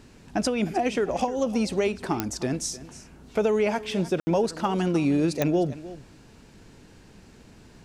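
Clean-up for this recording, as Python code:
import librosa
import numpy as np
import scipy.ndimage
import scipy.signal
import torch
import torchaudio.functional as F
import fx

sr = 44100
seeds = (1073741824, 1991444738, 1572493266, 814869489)

y = fx.fix_declick_ar(x, sr, threshold=10.0)
y = fx.fix_ambience(y, sr, seeds[0], print_start_s=6.04, print_end_s=6.54, start_s=4.2, end_s=4.27)
y = fx.fix_echo_inverse(y, sr, delay_ms=307, level_db=-16.5)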